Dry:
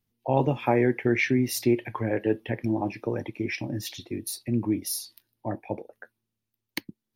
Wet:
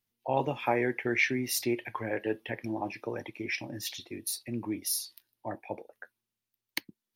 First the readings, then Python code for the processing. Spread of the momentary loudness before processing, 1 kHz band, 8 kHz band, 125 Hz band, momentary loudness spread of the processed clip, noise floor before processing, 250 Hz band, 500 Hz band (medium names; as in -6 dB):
14 LU, -3.0 dB, 0.0 dB, -11.0 dB, 15 LU, -85 dBFS, -8.5 dB, -6.0 dB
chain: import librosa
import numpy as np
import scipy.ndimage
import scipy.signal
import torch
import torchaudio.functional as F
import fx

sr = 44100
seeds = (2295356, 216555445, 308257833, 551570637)

y = fx.low_shelf(x, sr, hz=450.0, db=-12.0)